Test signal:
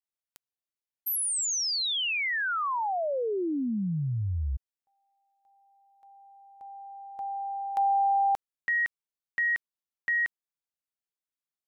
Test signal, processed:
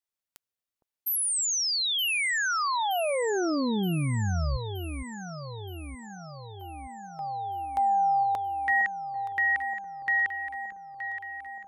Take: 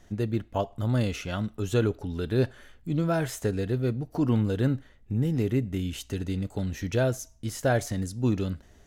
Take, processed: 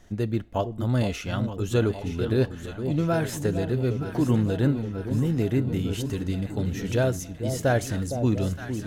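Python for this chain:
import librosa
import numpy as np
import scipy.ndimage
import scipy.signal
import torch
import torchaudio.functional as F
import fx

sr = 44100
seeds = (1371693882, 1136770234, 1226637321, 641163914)

y = fx.echo_alternate(x, sr, ms=461, hz=860.0, feedback_pct=77, wet_db=-8)
y = y * librosa.db_to_amplitude(1.5)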